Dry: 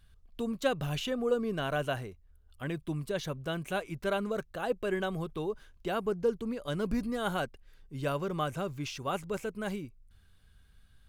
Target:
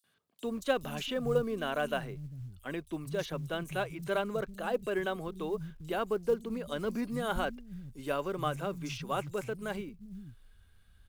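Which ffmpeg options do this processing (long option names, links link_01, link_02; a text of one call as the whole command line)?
ffmpeg -i in.wav -filter_complex "[0:a]acrossover=split=180|5200[link_01][link_02][link_03];[link_02]adelay=40[link_04];[link_01]adelay=440[link_05];[link_05][link_04][link_03]amix=inputs=3:normalize=0,acrusher=bits=8:mode=log:mix=0:aa=0.000001" out.wav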